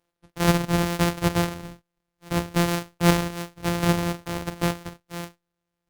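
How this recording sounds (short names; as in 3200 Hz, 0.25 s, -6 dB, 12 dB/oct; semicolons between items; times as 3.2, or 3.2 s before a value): a buzz of ramps at a fixed pitch in blocks of 256 samples; Opus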